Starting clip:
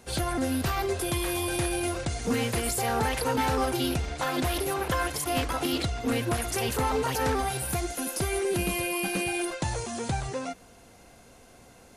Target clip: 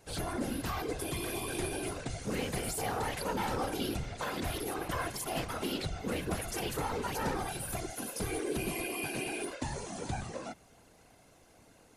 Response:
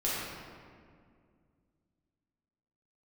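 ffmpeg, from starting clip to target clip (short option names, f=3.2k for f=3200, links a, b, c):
-af "afftfilt=real='hypot(re,im)*cos(2*PI*random(0))':imag='hypot(re,im)*sin(2*PI*random(1))':win_size=512:overlap=0.75,aeval=exprs='0.106*(cos(1*acos(clip(val(0)/0.106,-1,1)))-cos(1*PI/2))+0.00531*(cos(5*acos(clip(val(0)/0.106,-1,1)))-cos(5*PI/2))+0.00266*(cos(7*acos(clip(val(0)/0.106,-1,1)))-cos(7*PI/2))':c=same,volume=-2dB"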